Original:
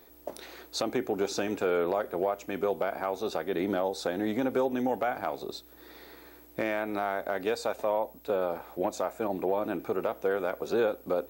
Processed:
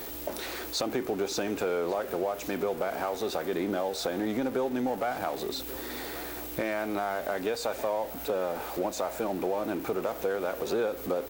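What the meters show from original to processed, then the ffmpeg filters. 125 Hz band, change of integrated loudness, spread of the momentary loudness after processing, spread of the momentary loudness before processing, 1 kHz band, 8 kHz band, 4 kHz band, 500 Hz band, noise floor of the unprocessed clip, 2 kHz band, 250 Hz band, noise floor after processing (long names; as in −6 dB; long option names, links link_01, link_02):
+1.0 dB, −0.5 dB, 5 LU, 14 LU, −0.5 dB, +5.0 dB, +4.0 dB, −0.5 dB, −54 dBFS, 0.0 dB, 0.0 dB, −39 dBFS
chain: -af "aeval=exprs='val(0)+0.5*0.015*sgn(val(0))':channel_layout=same,aecho=1:1:1137:0.0944,acompressor=threshold=-31dB:ratio=2,volume=2dB"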